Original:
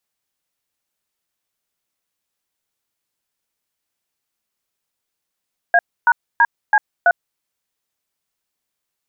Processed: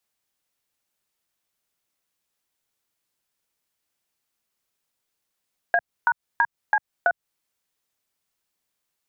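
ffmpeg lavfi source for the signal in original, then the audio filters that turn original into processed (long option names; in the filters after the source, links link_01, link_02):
-f lavfi -i "aevalsrc='0.266*clip(min(mod(t,0.33),0.05-mod(t,0.33))/0.002,0,1)*(eq(floor(t/0.33),0)*(sin(2*PI*697*mod(t,0.33))+sin(2*PI*1633*mod(t,0.33)))+eq(floor(t/0.33),1)*(sin(2*PI*941*mod(t,0.33))+sin(2*PI*1477*mod(t,0.33)))+eq(floor(t/0.33),2)*(sin(2*PI*941*mod(t,0.33))+sin(2*PI*1633*mod(t,0.33)))+eq(floor(t/0.33),3)*(sin(2*PI*852*mod(t,0.33))+sin(2*PI*1633*mod(t,0.33)))+eq(floor(t/0.33),4)*(sin(2*PI*697*mod(t,0.33))+sin(2*PI*1477*mod(t,0.33))))':duration=1.65:sample_rate=44100"
-filter_complex "[0:a]acrossover=split=150[link_01][link_02];[link_02]acompressor=threshold=-19dB:ratio=6[link_03];[link_01][link_03]amix=inputs=2:normalize=0"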